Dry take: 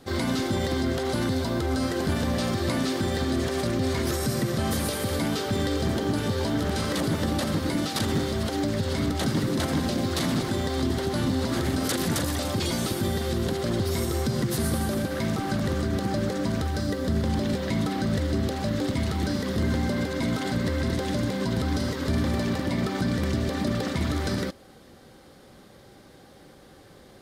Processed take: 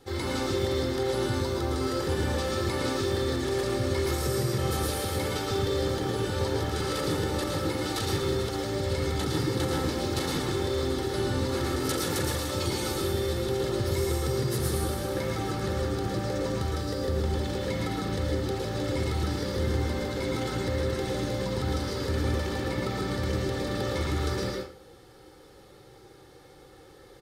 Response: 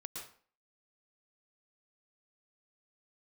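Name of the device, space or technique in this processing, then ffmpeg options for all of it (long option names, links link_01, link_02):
microphone above a desk: -filter_complex "[0:a]aecho=1:1:2.3:0.6[link_01];[1:a]atrim=start_sample=2205[link_02];[link_01][link_02]afir=irnorm=-1:irlink=0"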